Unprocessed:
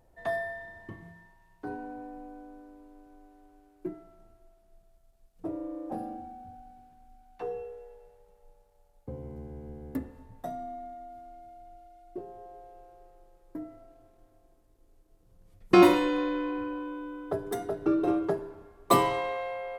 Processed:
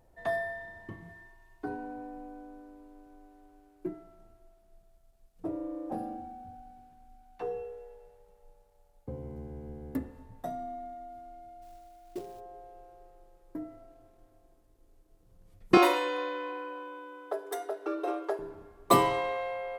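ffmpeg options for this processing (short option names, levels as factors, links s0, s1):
-filter_complex "[0:a]asettb=1/sr,asplit=3[s0][s1][s2];[s0]atrim=end=1.094[s3];[s1]atrim=start=1.09:end=1.66,asetpts=PTS-STARTPTS,afade=t=in:d=0.004:c=qsin,afade=t=out:st=0.566:d=0.004:c=qsin,aecho=1:1:2.8:0.69,atrim=end_sample=25137[s4];[s2]atrim=start=1.656[s5];[s3][s4]acrossfade=d=0.004:c1=hsin:c2=qsin[s6];[s6][s5]acrossfade=d=0.004:c1=qsin:c2=hsin,asplit=3[s7][s8][s9];[s7]afade=t=out:st=11.61:d=0.02[s10];[s8]acrusher=bits=4:mode=log:mix=0:aa=0.000001,afade=t=in:st=11.61:d=0.02,afade=t=out:st=12.39:d=0.02[s11];[s9]afade=t=in:st=12.39:d=0.02[s12];[s10][s11][s12]amix=inputs=3:normalize=0,asettb=1/sr,asplit=3[s13][s14][s15];[s13]atrim=end=15.774[s16];[s14]atrim=start=15.77:end=18.39,asetpts=PTS-STARTPTS,afade=t=in:d=0.004:c=qsin,afade=t=out:st=2.616:d=0.004:c=qsin,highpass=f=440:w=0.5412,highpass=f=440:w=1.3066[s17];[s15]atrim=start=18.386[s18];[s16][s17]acrossfade=d=0.004:c1=hsin:c2=qsin[s19];[s19][s18]acrossfade=d=0.004:c1=qsin:c2=hsin"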